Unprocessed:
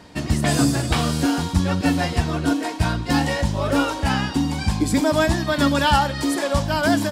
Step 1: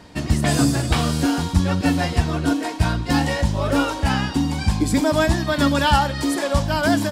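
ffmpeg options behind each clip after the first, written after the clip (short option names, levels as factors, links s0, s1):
-af "lowshelf=f=73:g=5"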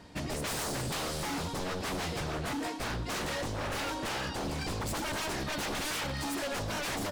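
-af "aeval=exprs='0.0794*(abs(mod(val(0)/0.0794+3,4)-2)-1)':c=same,volume=0.422"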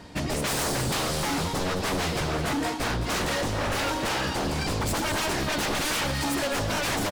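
-af "aecho=1:1:213:0.299,volume=2.24"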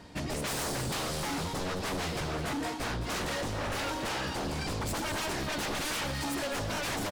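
-af "asoftclip=type=tanh:threshold=0.0891,volume=0.562"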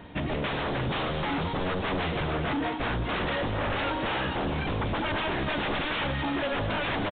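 -af "aresample=8000,aresample=44100,volume=1.78"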